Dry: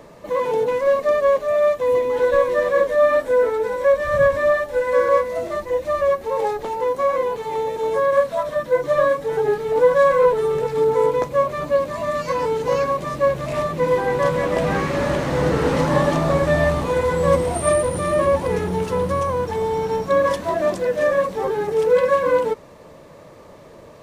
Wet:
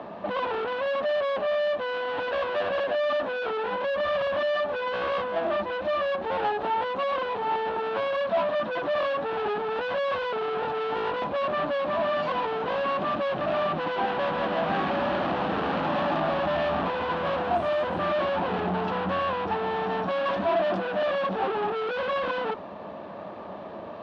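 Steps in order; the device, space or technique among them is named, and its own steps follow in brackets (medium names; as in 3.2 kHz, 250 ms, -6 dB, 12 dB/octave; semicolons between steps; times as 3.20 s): guitar amplifier (valve stage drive 32 dB, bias 0.5; tone controls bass -7 dB, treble -5 dB; cabinet simulation 83–3500 Hz, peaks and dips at 140 Hz -8 dB, 200 Hz +9 dB, 480 Hz -8 dB, 730 Hz +7 dB, 2.1 kHz -9 dB); trim +8.5 dB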